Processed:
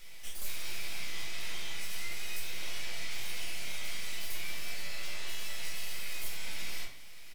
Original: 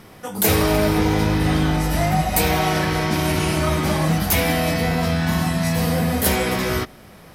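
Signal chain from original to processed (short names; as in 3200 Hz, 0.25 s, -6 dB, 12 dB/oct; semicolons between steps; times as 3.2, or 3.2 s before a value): steep high-pass 2000 Hz 72 dB/oct; high shelf 11000 Hz -6.5 dB; compressor 6:1, threshold -37 dBFS, peak gain reduction 17 dB; half-wave rectifier; harmoniser -7 st -14 dB; soft clip -33.5 dBFS, distortion -16 dB; shoebox room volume 89 m³, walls mixed, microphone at 0.91 m; gain +1 dB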